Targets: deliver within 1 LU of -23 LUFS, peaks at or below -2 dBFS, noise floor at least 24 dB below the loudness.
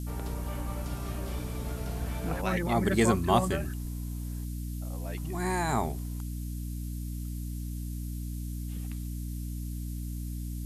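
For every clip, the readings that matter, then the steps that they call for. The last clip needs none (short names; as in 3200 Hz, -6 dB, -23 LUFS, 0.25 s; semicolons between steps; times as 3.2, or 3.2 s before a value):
hum 60 Hz; harmonics up to 300 Hz; hum level -33 dBFS; noise floor -36 dBFS; noise floor target -57 dBFS; loudness -33.0 LUFS; peak -11.0 dBFS; loudness target -23.0 LUFS
-> de-hum 60 Hz, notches 5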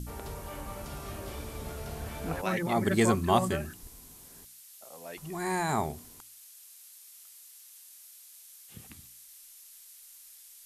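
hum none; noise floor -53 dBFS; noise floor target -56 dBFS
-> denoiser 6 dB, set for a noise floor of -53 dBFS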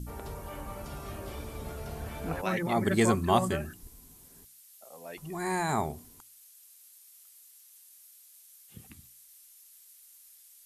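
noise floor -56 dBFS; loudness -31.5 LUFS; peak -11.0 dBFS; loudness target -23.0 LUFS
-> gain +8.5 dB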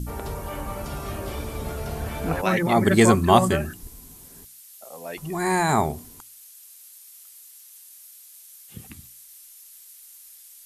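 loudness -23.0 LUFS; peak -2.5 dBFS; noise floor -48 dBFS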